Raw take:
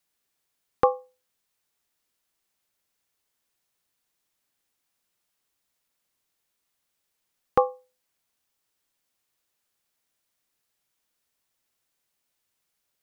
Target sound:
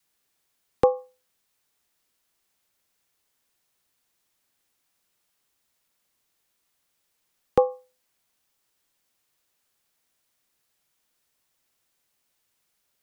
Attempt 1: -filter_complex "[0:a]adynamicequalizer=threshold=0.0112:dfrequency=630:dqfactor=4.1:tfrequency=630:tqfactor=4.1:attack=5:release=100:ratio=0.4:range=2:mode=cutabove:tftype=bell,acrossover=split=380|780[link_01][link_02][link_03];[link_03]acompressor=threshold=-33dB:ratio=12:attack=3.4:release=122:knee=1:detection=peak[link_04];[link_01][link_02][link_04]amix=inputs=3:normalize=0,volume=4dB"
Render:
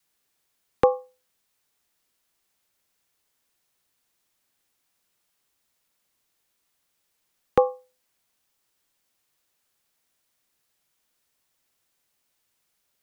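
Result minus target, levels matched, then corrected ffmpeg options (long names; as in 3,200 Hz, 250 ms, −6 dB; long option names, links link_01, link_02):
downward compressor: peak gain reduction −10.5 dB
-filter_complex "[0:a]adynamicequalizer=threshold=0.0112:dfrequency=630:dqfactor=4.1:tfrequency=630:tqfactor=4.1:attack=5:release=100:ratio=0.4:range=2:mode=cutabove:tftype=bell,acrossover=split=380|780[link_01][link_02][link_03];[link_03]acompressor=threshold=-44.5dB:ratio=12:attack=3.4:release=122:knee=1:detection=peak[link_04];[link_01][link_02][link_04]amix=inputs=3:normalize=0,volume=4dB"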